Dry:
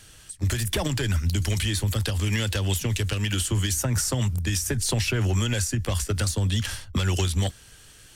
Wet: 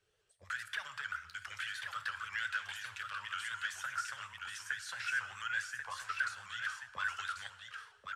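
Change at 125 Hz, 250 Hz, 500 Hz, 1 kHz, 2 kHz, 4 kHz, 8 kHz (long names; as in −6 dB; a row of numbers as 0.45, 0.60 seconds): below −40 dB, below −40 dB, −31.0 dB, −3.5 dB, −2.0 dB, −15.0 dB, −21.5 dB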